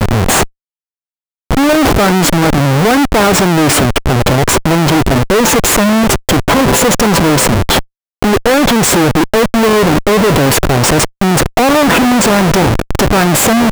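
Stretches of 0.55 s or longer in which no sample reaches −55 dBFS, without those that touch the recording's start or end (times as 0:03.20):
0:00.51–0:01.51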